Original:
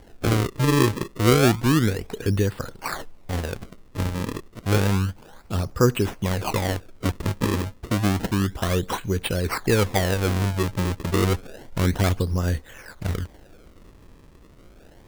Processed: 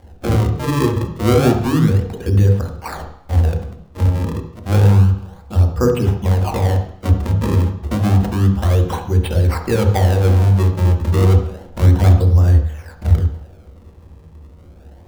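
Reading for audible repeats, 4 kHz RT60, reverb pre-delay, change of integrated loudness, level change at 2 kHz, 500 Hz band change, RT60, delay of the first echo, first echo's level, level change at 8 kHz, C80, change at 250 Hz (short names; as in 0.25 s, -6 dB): none, 0.70 s, 3 ms, +8.0 dB, -1.5 dB, +4.0 dB, 0.65 s, none, none, -2.5 dB, 10.0 dB, +4.5 dB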